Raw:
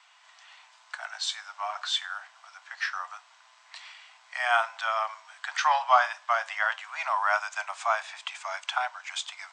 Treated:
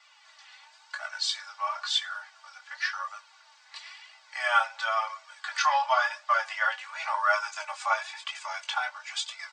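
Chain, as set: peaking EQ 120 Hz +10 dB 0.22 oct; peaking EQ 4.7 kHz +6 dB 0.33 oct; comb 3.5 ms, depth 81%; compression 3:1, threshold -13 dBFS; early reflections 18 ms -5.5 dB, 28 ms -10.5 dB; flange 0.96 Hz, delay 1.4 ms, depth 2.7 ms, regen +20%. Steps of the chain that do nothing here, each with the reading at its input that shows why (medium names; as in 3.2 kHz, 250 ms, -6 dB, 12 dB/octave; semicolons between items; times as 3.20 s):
peaking EQ 120 Hz: input has nothing below 540 Hz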